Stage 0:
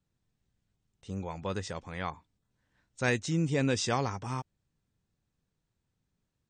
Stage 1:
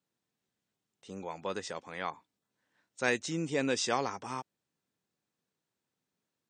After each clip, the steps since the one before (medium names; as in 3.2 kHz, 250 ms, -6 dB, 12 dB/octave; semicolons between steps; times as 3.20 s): high-pass 270 Hz 12 dB/octave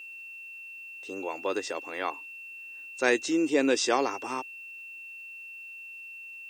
word length cut 12-bit, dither triangular; whistle 2.7 kHz -45 dBFS; resonant low shelf 230 Hz -9.5 dB, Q 3; trim +4 dB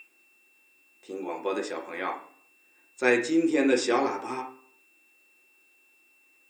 reverberation RT60 0.55 s, pre-delay 3 ms, DRR 0.5 dB; trim -3.5 dB